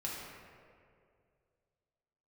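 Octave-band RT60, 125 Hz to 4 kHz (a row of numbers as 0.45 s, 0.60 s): 2.7 s, 2.3 s, 2.6 s, 2.0 s, 1.8 s, 1.2 s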